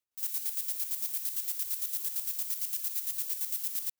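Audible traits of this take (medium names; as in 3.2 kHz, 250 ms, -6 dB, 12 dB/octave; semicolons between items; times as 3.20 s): chopped level 8.8 Hz, depth 60%, duty 35%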